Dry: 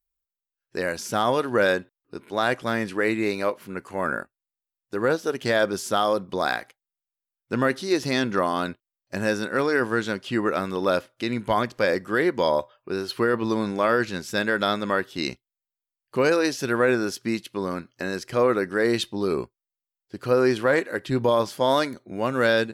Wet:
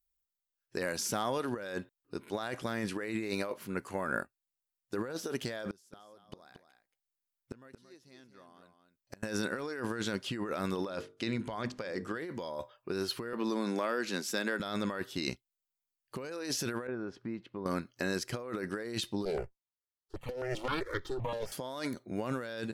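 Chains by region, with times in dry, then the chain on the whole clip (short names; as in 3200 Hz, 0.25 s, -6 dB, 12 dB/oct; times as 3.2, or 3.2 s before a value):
0.82–1.56 HPF 90 Hz + compressor 3:1, threshold -26 dBFS
5.7–9.23 flipped gate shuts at -28 dBFS, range -31 dB + echo 0.227 s -8.5 dB
10.85–12.19 LPF 7700 Hz + notches 50/100/150/200/250/300/350/400/450 Hz
13.33–14.6 HPF 200 Hz 24 dB/oct + compressor, threshold -24 dBFS
16.87–17.66 LPF 1500 Hz + compressor 2.5:1, threshold -36 dBFS
19.25–21.52 minimum comb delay 2.2 ms + high shelf 6500 Hz -12 dB + step phaser 7.7 Hz 320–2600 Hz
whole clip: tone controls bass +2 dB, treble +4 dB; negative-ratio compressor -28 dBFS, ratio -1; gain -7.5 dB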